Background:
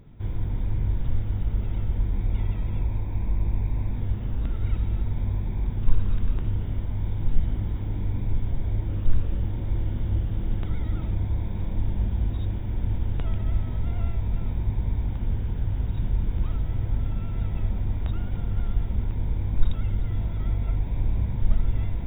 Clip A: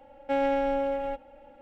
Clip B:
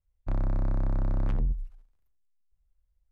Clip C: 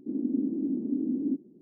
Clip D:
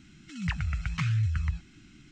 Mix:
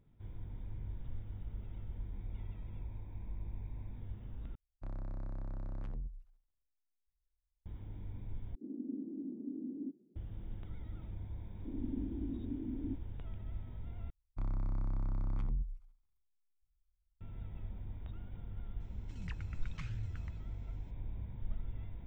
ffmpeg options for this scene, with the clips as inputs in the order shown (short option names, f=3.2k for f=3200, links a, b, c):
-filter_complex "[2:a]asplit=2[a][b];[3:a]asplit=2[c][d];[0:a]volume=-18dB[e];[b]aecho=1:1:0.9:0.47[f];[e]asplit=4[g][h][i][j];[g]atrim=end=4.554[k];[a]atrim=end=3.11,asetpts=PTS-STARTPTS,volume=-14.5dB[l];[h]atrim=start=7.656:end=8.554[m];[c]atrim=end=1.61,asetpts=PTS-STARTPTS,volume=-13dB[n];[i]atrim=start=10.156:end=14.104[o];[f]atrim=end=3.11,asetpts=PTS-STARTPTS,volume=-11.5dB[p];[j]atrim=start=17.206[q];[d]atrim=end=1.61,asetpts=PTS-STARTPTS,volume=-12dB,afade=t=in:d=0.004:c=hsin,afade=t=out:st=1.606:d=0.004:c=hsin,adelay=11590[r];[4:a]atrim=end=2.11,asetpts=PTS-STARTPTS,volume=-16.5dB,afade=t=in:d=0.004:c=hsin,afade=t=out:st=2.106:d=0.004:c=hsin,adelay=18800[s];[k][l]acrossfade=d=0.004:c1=hsin:c2=hsin[t];[t][m]acrossfade=d=0.004:c1=hsin:c2=hsin[u];[u][n]acrossfade=d=0.004:c1=hsin:c2=hsin[v];[v][o]acrossfade=d=0.004:c1=hsin:c2=hsin[w];[w][p]acrossfade=d=0.004:c1=hsin:c2=hsin[x];[x][q]acrossfade=d=0.004:c1=hsin:c2=hsin[y];[y][r][s]amix=inputs=3:normalize=0"